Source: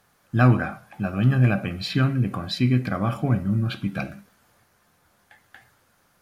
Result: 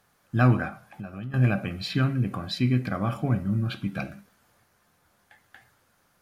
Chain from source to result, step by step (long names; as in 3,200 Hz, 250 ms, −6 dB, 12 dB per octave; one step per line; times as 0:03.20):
0:00.68–0:01.34: downward compressor 4 to 1, threshold −33 dBFS, peak gain reduction 16 dB
level −3 dB